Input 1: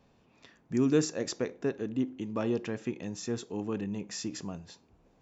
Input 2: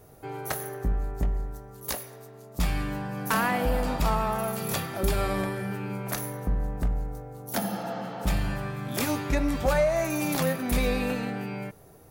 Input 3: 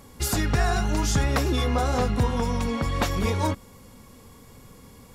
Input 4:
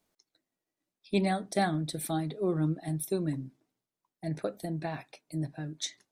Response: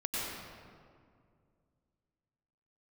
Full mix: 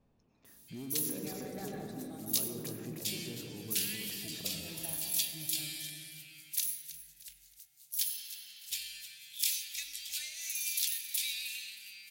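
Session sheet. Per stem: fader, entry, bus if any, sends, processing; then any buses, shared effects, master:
−12.5 dB, 0.00 s, bus A, send −17.5 dB, echo send −13.5 dB, spectral tilt −2 dB per octave; level that may fall only so fast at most 40 dB per second
+2.0 dB, 0.45 s, no bus, send −19.5 dB, echo send −14 dB, inverse Chebyshev high-pass filter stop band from 1,200 Hz, stop band 50 dB
muted
−19.5 dB, 0.00 s, bus A, send −4.5 dB, no echo send, no processing
bus A: 0.0 dB, hard clipping −31 dBFS, distortion −16 dB; downward compressor, threshold −46 dBFS, peak gain reduction 12 dB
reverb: on, RT60 2.2 s, pre-delay 88 ms
echo: repeating echo 313 ms, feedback 36%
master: noise that follows the level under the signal 34 dB

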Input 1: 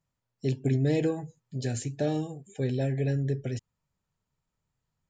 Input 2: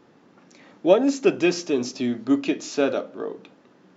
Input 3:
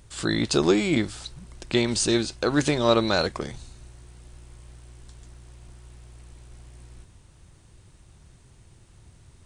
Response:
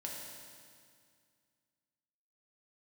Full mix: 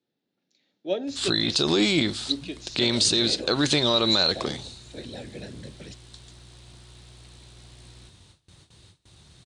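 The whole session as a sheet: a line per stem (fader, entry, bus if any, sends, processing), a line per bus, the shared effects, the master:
−5.0 dB, 2.35 s, no send, low-shelf EQ 380 Hz −9 dB; random phases in short frames
−12.5 dB, 0.00 s, no send, parametric band 1,100 Hz −13 dB 0.54 octaves; multiband upward and downward expander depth 40%
+1.0 dB, 1.05 s, no send, noise gate with hold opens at −43 dBFS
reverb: not used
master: high-pass filter 79 Hz; parametric band 3,900 Hz +13 dB 0.75 octaves; brickwall limiter −11 dBFS, peak gain reduction 10.5 dB

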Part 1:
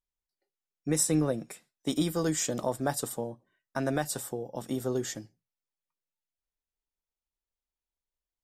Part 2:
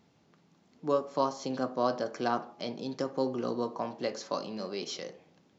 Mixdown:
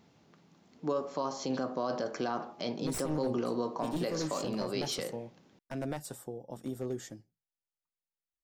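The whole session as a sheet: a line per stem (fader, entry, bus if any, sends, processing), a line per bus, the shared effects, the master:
−8.0 dB, 1.95 s, no send, wavefolder on the positive side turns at −24.5 dBFS; tilt shelving filter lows +3 dB
+2.5 dB, 0.00 s, no send, no processing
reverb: not used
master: brickwall limiter −23 dBFS, peak gain reduction 11 dB

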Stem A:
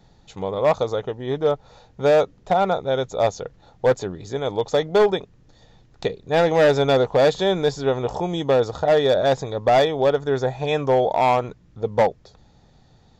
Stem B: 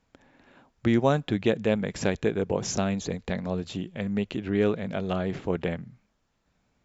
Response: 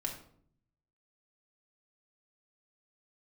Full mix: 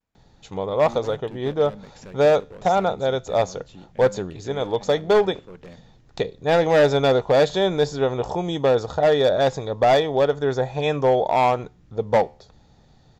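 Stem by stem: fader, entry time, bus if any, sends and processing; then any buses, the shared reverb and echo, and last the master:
+2.0 dB, 0.15 s, no send, no processing
−9.5 dB, 0.00 s, no send, pitch vibrato 0.41 Hz 30 cents; gain into a clipping stage and back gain 23.5 dB; every ending faded ahead of time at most 510 dB per second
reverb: not used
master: tuned comb filter 74 Hz, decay 0.38 s, harmonics all, mix 30%

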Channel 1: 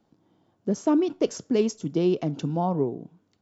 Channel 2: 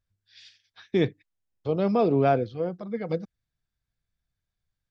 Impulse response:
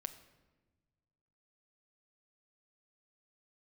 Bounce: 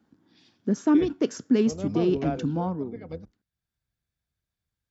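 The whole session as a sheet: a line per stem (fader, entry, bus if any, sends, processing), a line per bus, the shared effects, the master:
0:02.61 −2.5 dB → 0:02.84 −11 dB, 0.00 s, no send, graphic EQ with 15 bands 250 Hz +8 dB, 630 Hz −5 dB, 1,600 Hz +9 dB
−0.5 dB, 0.00 s, no send, sub-octave generator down 1 octave, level −4 dB; automatic ducking −10 dB, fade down 0.30 s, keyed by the first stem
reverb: not used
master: high-pass filter 49 Hz

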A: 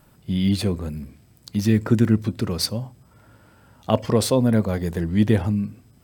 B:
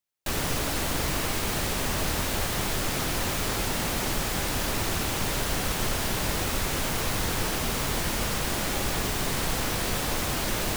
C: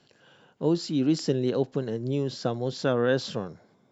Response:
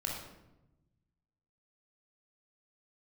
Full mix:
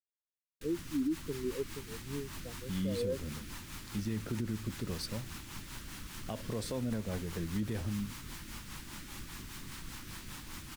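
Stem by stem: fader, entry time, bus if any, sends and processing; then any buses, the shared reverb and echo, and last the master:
−11.5 dB, 2.40 s, no send, no processing
−15.0 dB, 0.35 s, no send, flat-topped bell 550 Hz −13.5 dB 1.1 octaves
−1.5 dB, 0.00 s, no send, every bin expanded away from the loudest bin 2.5 to 1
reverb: not used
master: rotating-speaker cabinet horn 5 Hz; brickwall limiter −26 dBFS, peak gain reduction 10.5 dB

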